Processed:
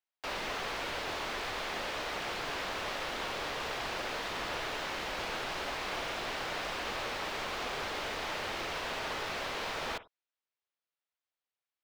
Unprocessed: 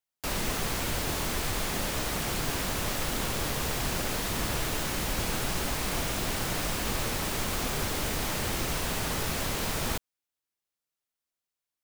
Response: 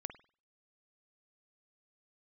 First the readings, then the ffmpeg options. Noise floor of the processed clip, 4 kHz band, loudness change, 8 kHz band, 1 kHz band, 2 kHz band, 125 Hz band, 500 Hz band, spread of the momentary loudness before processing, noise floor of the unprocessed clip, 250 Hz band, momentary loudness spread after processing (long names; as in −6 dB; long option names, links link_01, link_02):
below −85 dBFS, −4.0 dB, −6.0 dB, −14.5 dB, −1.5 dB, −1.5 dB, −16.5 dB, −3.5 dB, 0 LU, below −85 dBFS, −11.0 dB, 0 LU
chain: -filter_complex "[0:a]acrossover=split=380 4800:gain=0.158 1 0.0891[link_01][link_02][link_03];[link_01][link_02][link_03]amix=inputs=3:normalize=0,asplit=2[link_04][link_05];[1:a]atrim=start_sample=2205,atrim=end_sample=4410[link_06];[link_05][link_06]afir=irnorm=-1:irlink=0,volume=2.5dB[link_07];[link_04][link_07]amix=inputs=2:normalize=0,volume=-7dB"